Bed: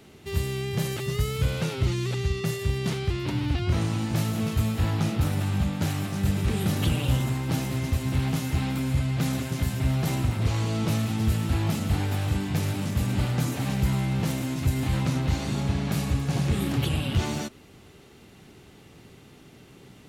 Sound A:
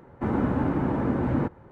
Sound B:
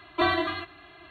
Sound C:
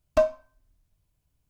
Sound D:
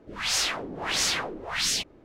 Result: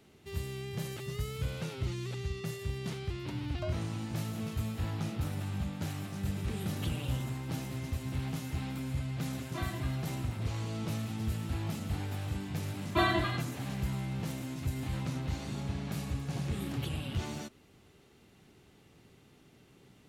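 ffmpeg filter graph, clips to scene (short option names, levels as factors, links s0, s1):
-filter_complex "[2:a]asplit=2[s0][s1];[0:a]volume=0.316[s2];[3:a]alimiter=limit=0.211:level=0:latency=1:release=71,atrim=end=1.49,asetpts=PTS-STARTPTS,volume=0.141,afade=t=in:d=0.004:c=hsin,afade=t=out:st=1.486:d=0.004:c=hsin,adelay=152145S[s3];[s0]atrim=end=1.1,asetpts=PTS-STARTPTS,volume=0.141,afade=t=in:d=0.004:c=hsin,afade=t=out:st=1.096:d=0.004:c=hsin,adelay=9360[s4];[s1]atrim=end=1.1,asetpts=PTS-STARTPTS,volume=0.631,afade=t=in:d=0.004:c=hsin,afade=t=out:st=1.096:d=0.004:c=hsin,adelay=12770[s5];[s2][s3][s4][s5]amix=inputs=4:normalize=0"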